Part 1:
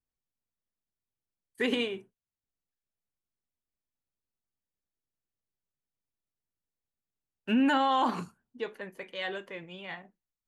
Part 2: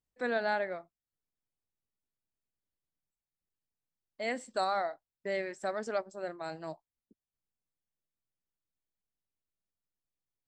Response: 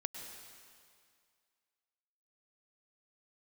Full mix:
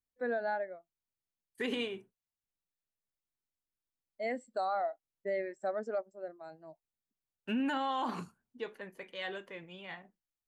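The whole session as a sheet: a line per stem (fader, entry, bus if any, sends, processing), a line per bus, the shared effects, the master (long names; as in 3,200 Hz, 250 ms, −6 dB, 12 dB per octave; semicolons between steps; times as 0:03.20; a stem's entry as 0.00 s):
−4.5 dB, 0.00 s, no send, no processing
+1.5 dB, 0.00 s, no send, every bin expanded away from the loudest bin 1.5 to 1; automatic ducking −16 dB, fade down 1.65 s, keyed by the first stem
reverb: not used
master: brickwall limiter −25.5 dBFS, peak gain reduction 6.5 dB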